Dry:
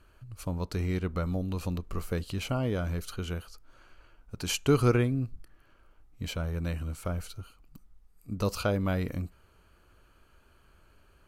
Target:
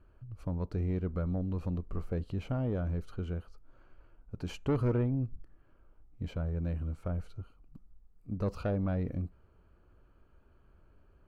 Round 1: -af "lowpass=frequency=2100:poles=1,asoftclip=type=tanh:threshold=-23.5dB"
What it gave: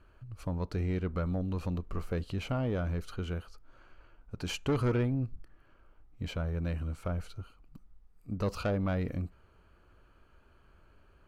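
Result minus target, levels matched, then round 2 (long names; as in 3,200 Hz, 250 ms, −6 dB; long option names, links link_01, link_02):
2,000 Hz band +6.5 dB
-af "lowpass=frequency=560:poles=1,asoftclip=type=tanh:threshold=-23.5dB"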